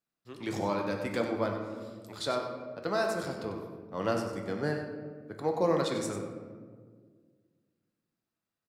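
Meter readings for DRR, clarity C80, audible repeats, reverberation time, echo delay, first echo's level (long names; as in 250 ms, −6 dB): 2.0 dB, 5.0 dB, 1, 1.7 s, 96 ms, −9.5 dB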